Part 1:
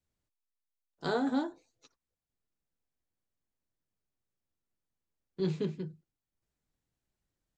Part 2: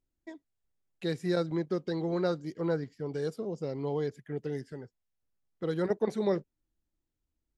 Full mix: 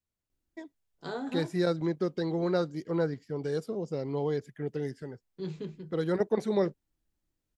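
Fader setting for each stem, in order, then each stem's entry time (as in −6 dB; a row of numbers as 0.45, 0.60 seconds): −5.5, +1.5 decibels; 0.00, 0.30 seconds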